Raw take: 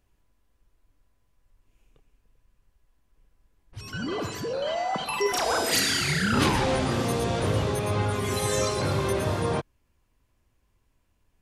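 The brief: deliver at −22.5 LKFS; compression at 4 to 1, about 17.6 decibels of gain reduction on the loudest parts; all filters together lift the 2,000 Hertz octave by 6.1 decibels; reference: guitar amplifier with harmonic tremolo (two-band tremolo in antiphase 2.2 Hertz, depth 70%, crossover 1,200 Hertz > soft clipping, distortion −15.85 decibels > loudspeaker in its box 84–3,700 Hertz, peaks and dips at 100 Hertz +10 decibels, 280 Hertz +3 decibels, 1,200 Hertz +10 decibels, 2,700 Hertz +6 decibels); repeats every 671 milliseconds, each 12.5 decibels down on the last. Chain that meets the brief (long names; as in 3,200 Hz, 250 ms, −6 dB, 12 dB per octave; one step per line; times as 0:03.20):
parametric band 2,000 Hz +4.5 dB
downward compressor 4 to 1, threshold −40 dBFS
repeating echo 671 ms, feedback 24%, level −12.5 dB
two-band tremolo in antiphase 2.2 Hz, depth 70%, crossover 1,200 Hz
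soft clipping −37.5 dBFS
loudspeaker in its box 84–3,700 Hz, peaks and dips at 100 Hz +10 dB, 280 Hz +3 dB, 1,200 Hz +10 dB, 2,700 Hz +6 dB
level +20 dB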